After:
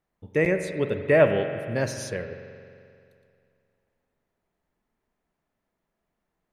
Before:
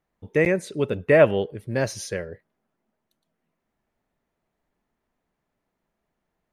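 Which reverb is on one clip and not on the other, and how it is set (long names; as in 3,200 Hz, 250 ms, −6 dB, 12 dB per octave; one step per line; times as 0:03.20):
spring reverb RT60 2.4 s, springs 44 ms, chirp 75 ms, DRR 7 dB
level −2.5 dB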